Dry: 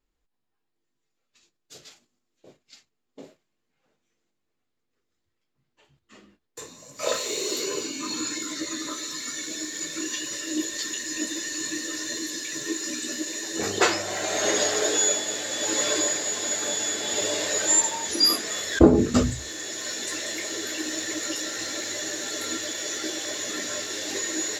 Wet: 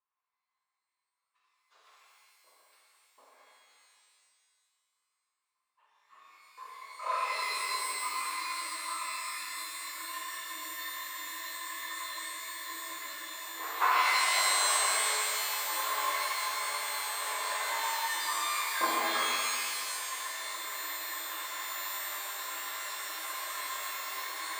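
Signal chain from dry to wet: ladder band-pass 1.1 kHz, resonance 80%; pitch-shifted reverb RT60 2.1 s, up +12 st, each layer -2 dB, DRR -5.5 dB

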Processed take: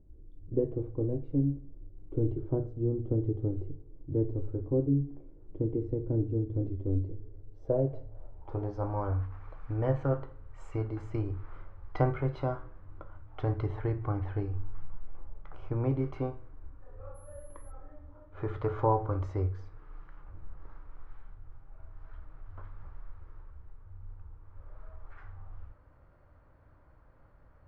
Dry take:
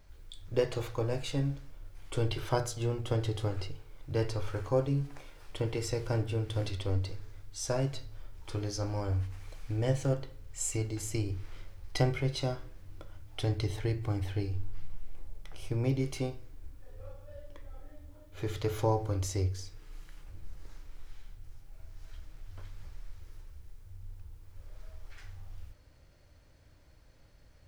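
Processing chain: low-pass sweep 320 Hz -> 1.2 kHz, 7.04–9.15 s; 17.14–17.70 s: whistle 11 kHz -60 dBFS

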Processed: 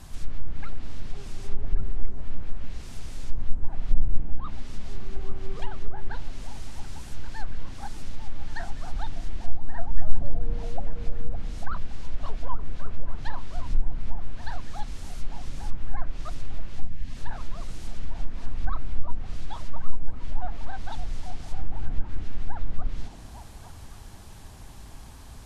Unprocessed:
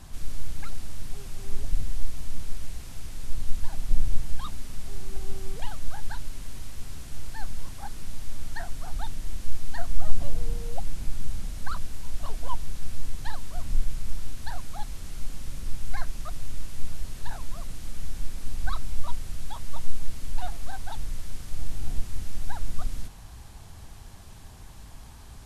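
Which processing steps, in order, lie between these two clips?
low-pass that closes with the level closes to 760 Hz, closed at -12 dBFS; repeats whose band climbs or falls 282 ms, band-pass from 290 Hz, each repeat 0.7 oct, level -2 dB; time-frequency box 16.81–17.16 s, 300–1600 Hz -10 dB; trim +1 dB

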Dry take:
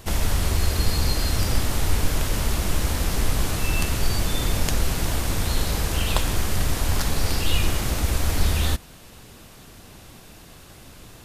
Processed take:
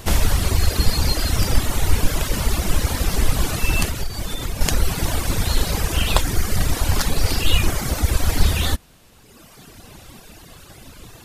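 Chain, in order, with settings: reverb removal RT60 1.8 s; 3.85–4.61 s: compression 6:1, threshold -27 dBFS, peak gain reduction 11.5 dB; trim +6.5 dB

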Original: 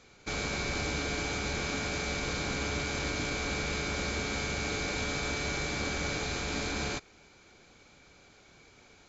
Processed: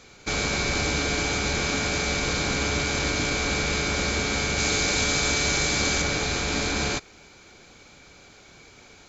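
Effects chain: treble shelf 4.3 kHz +4 dB, from 4.58 s +11 dB, from 6.02 s +3.5 dB; trim +7 dB

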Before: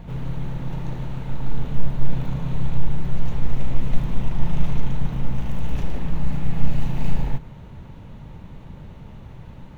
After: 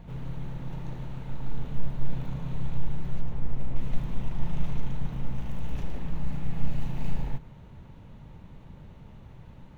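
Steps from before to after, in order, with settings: 3.21–3.76 s: tape noise reduction on one side only decoder only; trim -7.5 dB

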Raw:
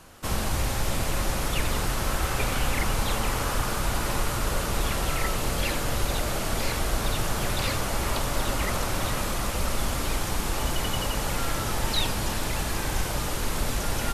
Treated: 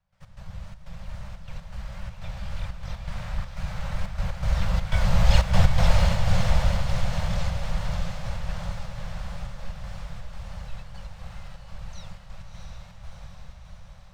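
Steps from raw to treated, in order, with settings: fade out at the end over 0.98 s; Doppler pass-by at 5.57 s, 20 m/s, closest 7.5 m; Savitzky-Golay filter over 15 samples; bass shelf 390 Hz +11 dB; wow and flutter 130 cents; harmony voices +7 st -1 dB; trance gate ".x.xxx.xxxx" 122 bpm -12 dB; elliptic band-stop 190–530 Hz, stop band 40 dB; on a send: echo that smears into a reverb 683 ms, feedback 55%, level -4 dB; on the sum: short-mantissa float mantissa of 8-bit

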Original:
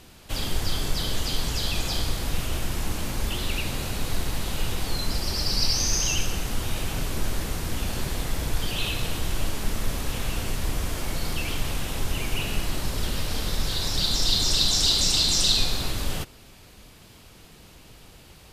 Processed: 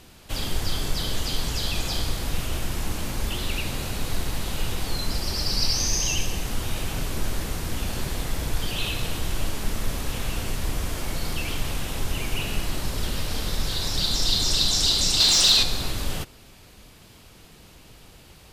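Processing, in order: 5.89–6.43 s: band-stop 1.4 kHz, Q 5.4; 15.20–15.63 s: overdrive pedal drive 13 dB, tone 6.6 kHz, clips at -7 dBFS

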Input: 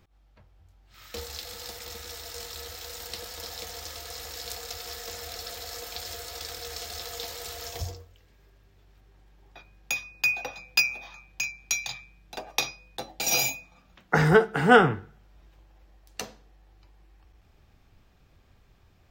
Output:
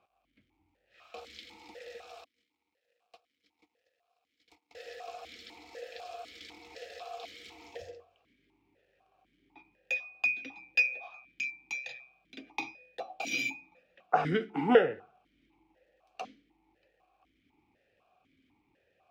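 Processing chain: 2.24–4.75 s: gate -34 dBFS, range -34 dB; crackle 260 per s -56 dBFS; stepped vowel filter 4 Hz; trim +6.5 dB

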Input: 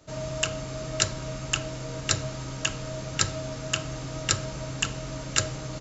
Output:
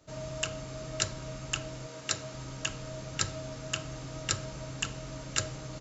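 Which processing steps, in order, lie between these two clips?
1.86–2.33 s: high-pass 410 Hz -> 180 Hz 6 dB/octave; trim -6 dB

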